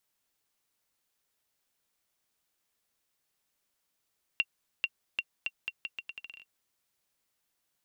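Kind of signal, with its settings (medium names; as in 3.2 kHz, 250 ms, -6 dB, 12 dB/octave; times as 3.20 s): bouncing ball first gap 0.44 s, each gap 0.79, 2.75 kHz, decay 48 ms -14.5 dBFS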